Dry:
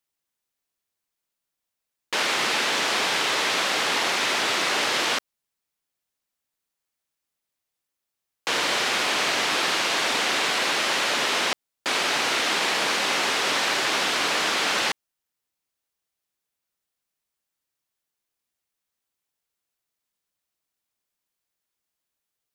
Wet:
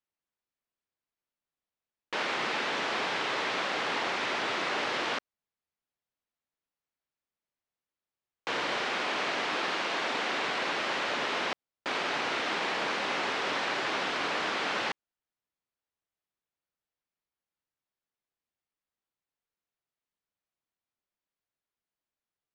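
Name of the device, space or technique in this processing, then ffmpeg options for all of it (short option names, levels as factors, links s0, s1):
through cloth: -filter_complex "[0:a]lowpass=6500,highshelf=f=3700:g=-12,asettb=1/sr,asplit=3[s0][s1][s2];[s0]atrim=end=8.814[s3];[s1]atrim=start=8.81:end=10.39,asetpts=PTS-STARTPTS,afade=t=in:d=0.004:c=qsin,afade=t=out:st=1.576:d=0.004:c=qsin,highpass=140[s4];[s2]atrim=start=10.386[s5];[s3][s4]acrossfade=d=0.004:c1=hsin:c2=qsin[s6];[s6][s5]acrossfade=d=0.004:c1=qsin:c2=hsin,volume=0.596"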